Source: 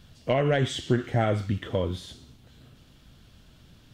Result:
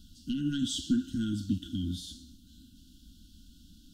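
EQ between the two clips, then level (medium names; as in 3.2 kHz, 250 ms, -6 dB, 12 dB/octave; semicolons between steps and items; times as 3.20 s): brick-wall FIR band-stop 330–1400 Hz; Butterworth band-stop 2.2 kHz, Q 1.5; static phaser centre 470 Hz, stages 6; +3.0 dB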